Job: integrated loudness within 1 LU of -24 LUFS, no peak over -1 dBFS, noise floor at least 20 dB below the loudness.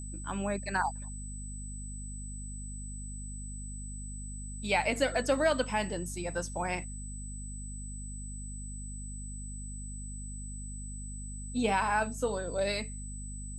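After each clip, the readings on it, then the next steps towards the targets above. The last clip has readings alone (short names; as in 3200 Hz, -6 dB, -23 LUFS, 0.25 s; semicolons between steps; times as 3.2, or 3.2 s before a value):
hum 50 Hz; harmonics up to 250 Hz; hum level -39 dBFS; steady tone 8000 Hz; tone level -45 dBFS; loudness -35.0 LUFS; peak -14.5 dBFS; loudness target -24.0 LUFS
-> de-hum 50 Hz, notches 5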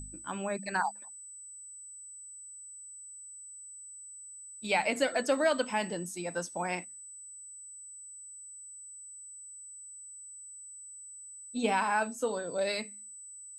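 hum none; steady tone 8000 Hz; tone level -45 dBFS
-> notch 8000 Hz, Q 30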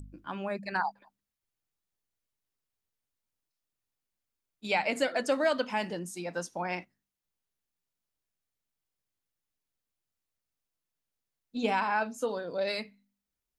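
steady tone none; loudness -32.0 LUFS; peak -14.5 dBFS; loudness target -24.0 LUFS
-> gain +8 dB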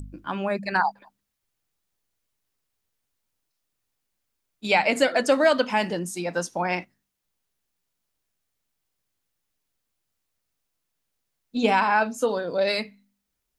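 loudness -24.0 LUFS; peak -6.5 dBFS; noise floor -80 dBFS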